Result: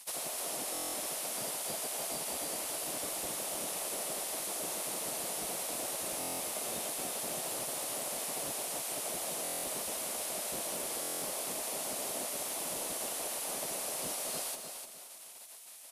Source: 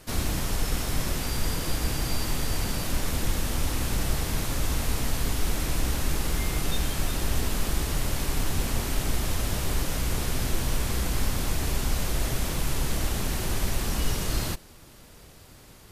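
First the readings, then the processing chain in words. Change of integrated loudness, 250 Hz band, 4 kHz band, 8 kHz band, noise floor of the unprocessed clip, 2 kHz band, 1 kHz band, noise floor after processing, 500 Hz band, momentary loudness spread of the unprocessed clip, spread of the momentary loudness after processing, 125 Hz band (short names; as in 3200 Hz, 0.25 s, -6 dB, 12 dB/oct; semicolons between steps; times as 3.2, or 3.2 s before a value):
-6.0 dB, -14.5 dB, -7.0 dB, -0.5 dB, -50 dBFS, -9.5 dB, -5.5 dB, -51 dBFS, -4.0 dB, 1 LU, 0 LU, -27.5 dB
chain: spectral gate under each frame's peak -20 dB weak; fifteen-band EQ 100 Hz -8 dB, 630 Hz +9 dB, 1600 Hz -5 dB, 10000 Hz +10 dB; compressor 2:1, threshold -42 dBFS, peak gain reduction 8.5 dB; feedback echo 0.301 s, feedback 33%, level -7 dB; stuck buffer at 0.73/6.19/9.43/11.01, samples 1024, times 8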